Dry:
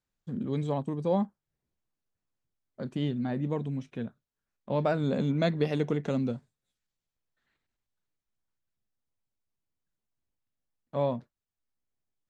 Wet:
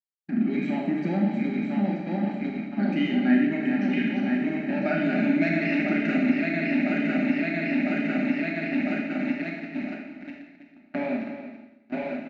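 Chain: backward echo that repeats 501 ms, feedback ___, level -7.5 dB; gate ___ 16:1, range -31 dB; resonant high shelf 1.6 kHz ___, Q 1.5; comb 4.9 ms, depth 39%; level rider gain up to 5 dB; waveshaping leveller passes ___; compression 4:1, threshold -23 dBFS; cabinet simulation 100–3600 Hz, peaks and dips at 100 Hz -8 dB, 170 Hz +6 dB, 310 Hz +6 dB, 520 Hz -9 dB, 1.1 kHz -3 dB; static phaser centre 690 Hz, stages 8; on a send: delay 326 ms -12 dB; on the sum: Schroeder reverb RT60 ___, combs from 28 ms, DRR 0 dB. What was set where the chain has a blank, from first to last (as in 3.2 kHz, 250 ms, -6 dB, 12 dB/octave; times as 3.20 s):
85%, -38 dBFS, +13 dB, 2, 0.92 s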